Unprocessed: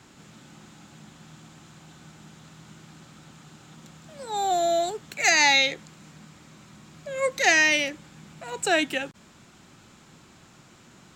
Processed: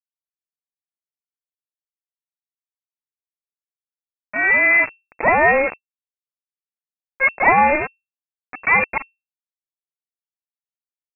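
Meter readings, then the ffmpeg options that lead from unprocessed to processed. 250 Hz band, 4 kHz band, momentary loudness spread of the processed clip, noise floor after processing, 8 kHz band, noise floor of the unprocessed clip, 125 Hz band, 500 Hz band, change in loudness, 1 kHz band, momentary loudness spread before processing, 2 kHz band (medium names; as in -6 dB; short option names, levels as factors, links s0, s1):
+3.0 dB, under -40 dB, 12 LU, under -85 dBFS, under -40 dB, -54 dBFS, +5.5 dB, +4.5 dB, +6.0 dB, +8.0 dB, 17 LU, +7.0 dB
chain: -af "acrusher=bits=3:mix=0:aa=0.000001,lowpass=f=2300:t=q:w=0.5098,lowpass=f=2300:t=q:w=0.6013,lowpass=f=2300:t=q:w=0.9,lowpass=f=2300:t=q:w=2.563,afreqshift=-2700,volume=2.24"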